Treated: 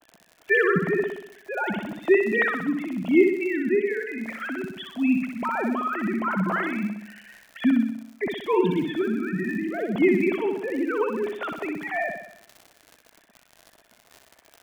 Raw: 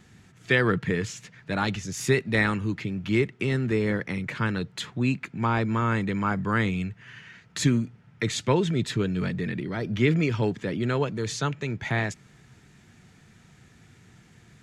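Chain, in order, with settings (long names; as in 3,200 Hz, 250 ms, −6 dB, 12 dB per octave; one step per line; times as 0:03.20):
three sine waves on the formant tracks
surface crackle 58 per second −34 dBFS
parametric band 660 Hz +8.5 dB 0.35 octaves
on a send: flutter between parallel walls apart 10.7 metres, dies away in 0.72 s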